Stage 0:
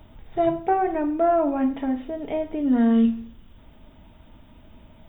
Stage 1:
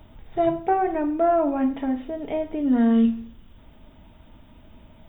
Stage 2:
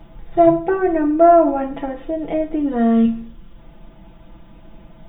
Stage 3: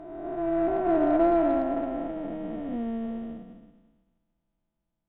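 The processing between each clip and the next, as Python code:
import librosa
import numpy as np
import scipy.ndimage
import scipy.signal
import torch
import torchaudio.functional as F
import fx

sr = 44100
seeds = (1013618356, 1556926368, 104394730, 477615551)

y1 = x
y2 = fx.high_shelf(y1, sr, hz=3000.0, db=-10.5)
y2 = y2 + 0.93 * np.pad(y2, (int(5.9 * sr / 1000.0), 0))[:len(y2)]
y2 = F.gain(torch.from_numpy(y2), 4.5).numpy()
y3 = fx.spec_blur(y2, sr, span_ms=1230.0)
y3 = fx.cheby_harmonics(y3, sr, harmonics=(6,), levels_db=(-32,), full_scale_db=-11.5)
y3 = fx.upward_expand(y3, sr, threshold_db=-42.0, expansion=2.5)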